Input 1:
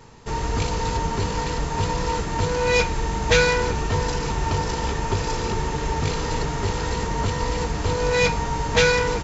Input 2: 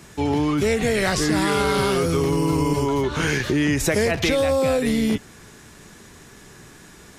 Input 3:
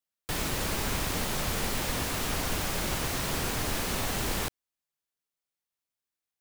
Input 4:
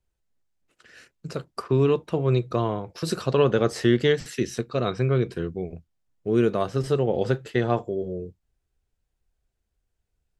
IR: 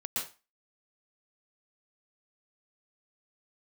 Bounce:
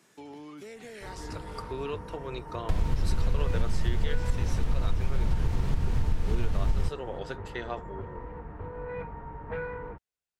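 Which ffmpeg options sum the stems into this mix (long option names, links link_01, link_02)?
-filter_complex "[0:a]lowpass=frequency=1700:width=0.5412,lowpass=frequency=1700:width=1.3066,adelay=750,volume=-16dB[link_01];[1:a]highpass=220,acompressor=threshold=-29dB:ratio=2.5,volume=-16dB[link_02];[2:a]acrossover=split=190[link_03][link_04];[link_04]acompressor=threshold=-39dB:ratio=6[link_05];[link_03][link_05]amix=inputs=2:normalize=0,aemphasis=mode=reproduction:type=bsi,adelay=2400,volume=1dB[link_06];[3:a]highpass=frequency=990:poles=1,volume=-6dB,asplit=2[link_07][link_08];[link_08]apad=whole_len=316932[link_09];[link_02][link_09]sidechaincompress=threshold=-43dB:ratio=8:attack=16:release=535[link_10];[link_01][link_10][link_06][link_07]amix=inputs=4:normalize=0,acompressor=threshold=-20dB:ratio=6"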